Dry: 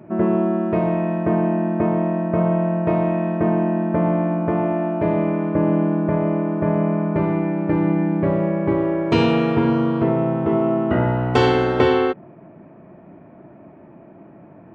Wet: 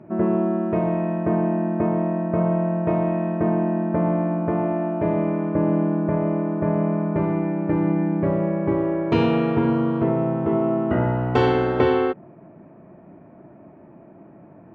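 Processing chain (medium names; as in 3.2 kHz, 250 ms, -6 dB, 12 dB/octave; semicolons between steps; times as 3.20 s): low-pass 2.3 kHz 6 dB/octave; trim -2 dB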